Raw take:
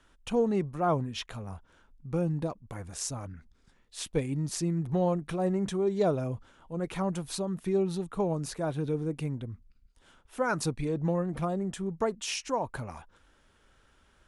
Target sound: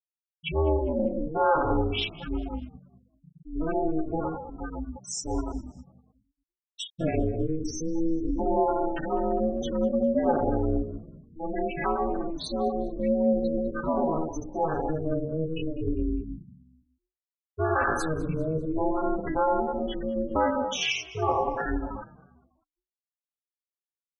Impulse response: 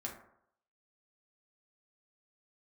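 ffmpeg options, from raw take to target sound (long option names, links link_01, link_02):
-filter_complex "[0:a]acrossover=split=180|1000[link_01][link_02][link_03];[link_01]acrusher=bits=3:mode=log:mix=0:aa=0.000001[link_04];[link_04][link_02][link_03]amix=inputs=3:normalize=0[link_05];[1:a]atrim=start_sample=2205,afade=type=out:start_time=0.24:duration=0.01,atrim=end_sample=11025[link_06];[link_05][link_06]afir=irnorm=-1:irlink=0,asplit=2[link_07][link_08];[link_08]alimiter=limit=-23dB:level=0:latency=1:release=39,volume=-2dB[link_09];[link_07][link_09]amix=inputs=2:normalize=0,equalizer=frequency=1600:width_type=o:width=1.3:gain=2.5,aecho=1:1:7.2:0.9,atempo=0.59,adynamicequalizer=threshold=0.00282:dfrequency=2800:dqfactor=2.2:tfrequency=2800:tqfactor=2.2:attack=5:release=100:ratio=0.375:range=3.5:mode=boostabove:tftype=bell,acontrast=58,afftfilt=real='re*gte(hypot(re,im),0.178)':imag='im*gte(hypot(re,im),0.178)':win_size=1024:overlap=0.75,asplit=4[link_10][link_11][link_12][link_13];[link_11]adelay=200,afreqshift=-69,volume=-21.5dB[link_14];[link_12]adelay=400,afreqshift=-138,volume=-28.2dB[link_15];[link_13]adelay=600,afreqshift=-207,volume=-35dB[link_16];[link_10][link_14][link_15][link_16]amix=inputs=4:normalize=0,aeval=exprs='val(0)*sin(2*PI*160*n/s)':channel_layout=same,acompressor=threshold=-27dB:ratio=1.5,volume=-1.5dB"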